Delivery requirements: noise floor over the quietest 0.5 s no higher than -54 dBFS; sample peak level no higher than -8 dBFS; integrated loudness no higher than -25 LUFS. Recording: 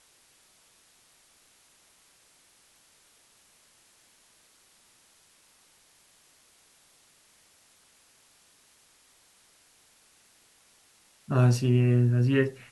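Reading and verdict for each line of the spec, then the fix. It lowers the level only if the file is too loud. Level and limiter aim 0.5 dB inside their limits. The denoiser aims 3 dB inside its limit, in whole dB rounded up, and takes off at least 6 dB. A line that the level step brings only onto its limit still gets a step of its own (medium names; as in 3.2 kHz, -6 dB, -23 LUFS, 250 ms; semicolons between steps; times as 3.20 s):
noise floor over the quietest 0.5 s -62 dBFS: pass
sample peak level -10.5 dBFS: pass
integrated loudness -24.0 LUFS: fail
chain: trim -1.5 dB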